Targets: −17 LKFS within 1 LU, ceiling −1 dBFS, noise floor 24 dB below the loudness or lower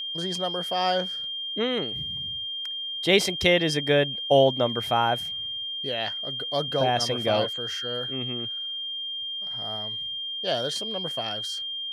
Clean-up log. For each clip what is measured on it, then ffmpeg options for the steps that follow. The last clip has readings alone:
interfering tone 3,200 Hz; level of the tone −30 dBFS; integrated loudness −26.0 LKFS; sample peak −4.5 dBFS; target loudness −17.0 LKFS
→ -af "bandreject=frequency=3200:width=30"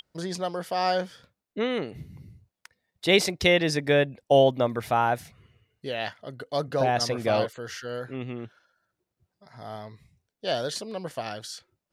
interfering tone none found; integrated loudness −26.5 LKFS; sample peak −5.5 dBFS; target loudness −17.0 LKFS
→ -af "volume=9.5dB,alimiter=limit=-1dB:level=0:latency=1"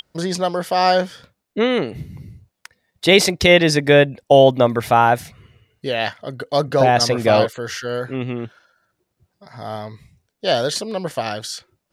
integrated loudness −17.5 LKFS; sample peak −1.0 dBFS; background noise floor −76 dBFS

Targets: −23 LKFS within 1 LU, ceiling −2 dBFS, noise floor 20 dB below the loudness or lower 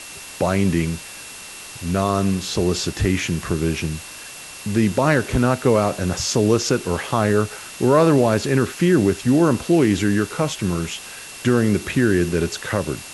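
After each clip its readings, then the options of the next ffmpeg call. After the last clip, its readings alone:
interfering tone 2,700 Hz; level of the tone −42 dBFS; background noise floor −37 dBFS; target noise floor −40 dBFS; integrated loudness −20.0 LKFS; sample peak −4.0 dBFS; target loudness −23.0 LKFS
→ -af "bandreject=frequency=2700:width=30"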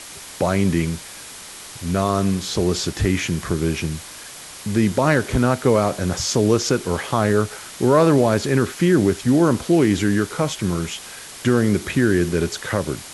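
interfering tone none found; background noise floor −38 dBFS; target noise floor −40 dBFS
→ -af "afftdn=noise_reduction=6:noise_floor=-38"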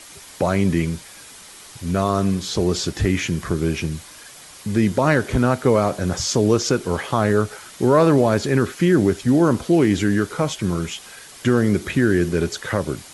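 background noise floor −42 dBFS; integrated loudness −20.0 LKFS; sample peak −4.0 dBFS; target loudness −23.0 LKFS
→ -af "volume=-3dB"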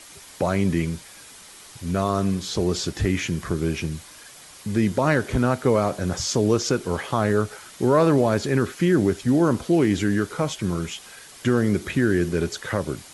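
integrated loudness −23.0 LKFS; sample peak −7.0 dBFS; background noise floor −45 dBFS

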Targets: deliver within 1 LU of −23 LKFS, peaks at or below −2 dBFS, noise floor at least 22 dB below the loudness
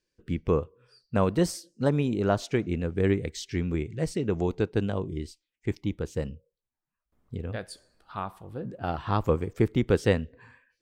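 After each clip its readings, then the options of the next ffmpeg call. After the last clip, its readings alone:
integrated loudness −29.0 LKFS; sample peak −9.5 dBFS; target loudness −23.0 LKFS
→ -af "volume=6dB"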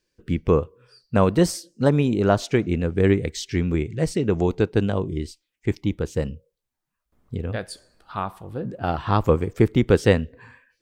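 integrated loudness −23.0 LKFS; sample peak −3.5 dBFS; background noise floor −81 dBFS

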